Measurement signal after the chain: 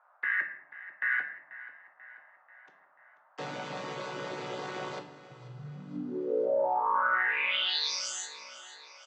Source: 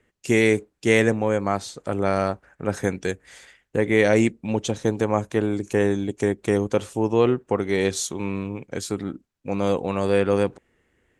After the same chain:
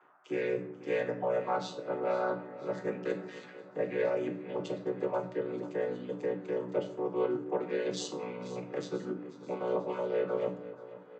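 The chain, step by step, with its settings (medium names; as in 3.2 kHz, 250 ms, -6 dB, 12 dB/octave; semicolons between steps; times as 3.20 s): vocoder on a held chord minor triad, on B2; reverb removal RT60 0.58 s; reverse; compression 6:1, threshold -33 dBFS; reverse; band noise 600–1500 Hz -73 dBFS; band-pass 380–5200 Hz; on a send: feedback delay 488 ms, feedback 54%, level -16.5 dB; on the sum: simulated room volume 110 m³, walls mixed, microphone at 0.49 m; trim +7 dB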